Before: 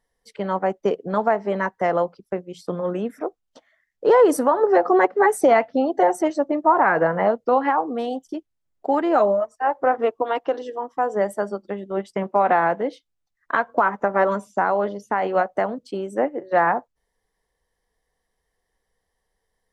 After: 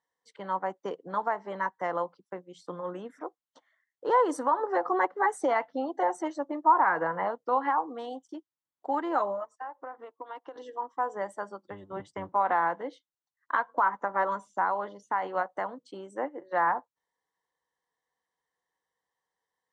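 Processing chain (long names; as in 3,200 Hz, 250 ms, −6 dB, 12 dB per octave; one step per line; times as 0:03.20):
0:11.66–0:12.35: sub-octave generator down 1 octave, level −1 dB
parametric band 2,500 Hz −11 dB 0.22 octaves
0:09.44–0:10.56: downward compressor 16 to 1, threshold −29 dBFS, peak gain reduction 15 dB
loudspeaker in its box 210–8,100 Hz, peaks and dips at 220 Hz −9 dB, 410 Hz −8 dB, 640 Hz −7 dB, 1,000 Hz +6 dB, 5,000 Hz −6 dB
level −7 dB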